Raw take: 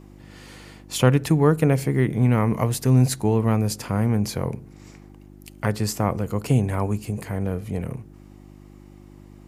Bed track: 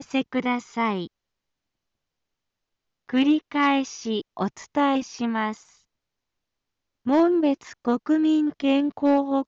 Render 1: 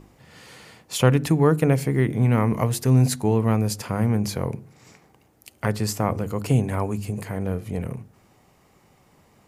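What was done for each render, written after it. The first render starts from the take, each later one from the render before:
hum removal 50 Hz, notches 7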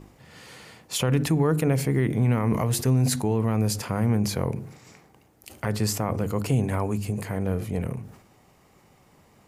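brickwall limiter −13.5 dBFS, peak gain reduction 9.5 dB
level that may fall only so fast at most 92 dB per second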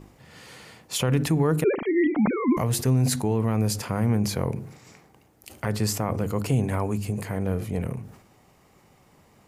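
0:01.64–0:02.57: three sine waves on the formant tracks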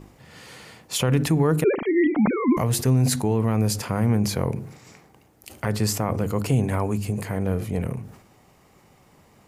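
level +2 dB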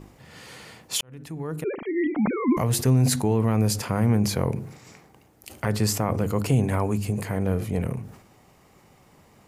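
0:01.01–0:02.82: fade in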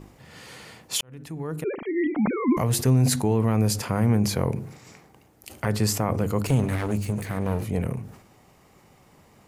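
0:06.47–0:07.64: lower of the sound and its delayed copy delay 0.48 ms

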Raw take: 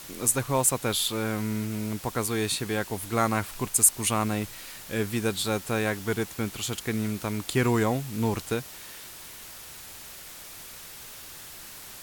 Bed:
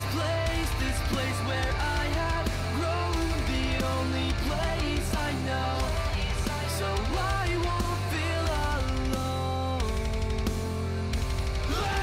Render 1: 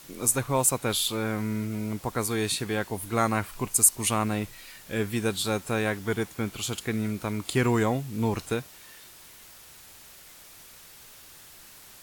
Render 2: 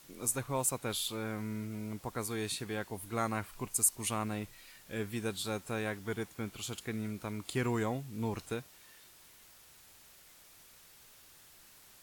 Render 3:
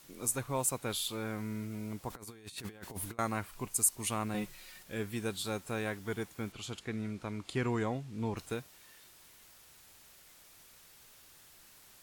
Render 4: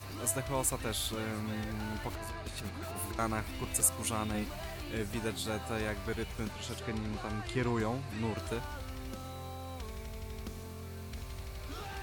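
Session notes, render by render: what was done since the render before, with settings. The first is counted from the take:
noise reduction from a noise print 6 dB
level −9 dB
0:02.10–0:03.19: compressor whose output falls as the input rises −44 dBFS, ratio −0.5; 0:04.34–0:04.83: comb filter 5.5 ms, depth 99%; 0:06.52–0:08.37: high-frequency loss of the air 57 metres
mix in bed −14 dB

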